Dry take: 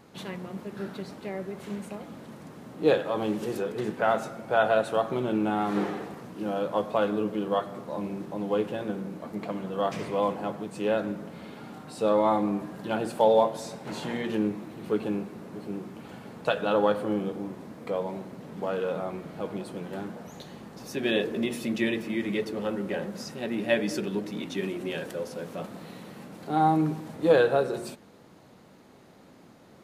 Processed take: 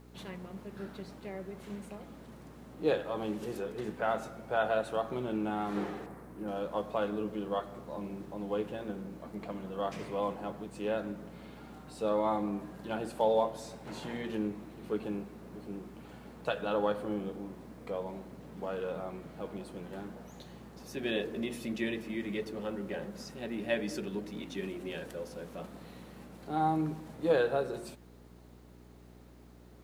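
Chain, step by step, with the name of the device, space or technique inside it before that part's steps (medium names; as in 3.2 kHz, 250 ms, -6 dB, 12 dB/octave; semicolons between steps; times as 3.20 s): 6.06–6.48 s: high-order bell 4.3 kHz -10.5 dB; video cassette with head-switching buzz (mains buzz 60 Hz, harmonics 7, -49 dBFS -4 dB/octave; white noise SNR 39 dB); trim -7 dB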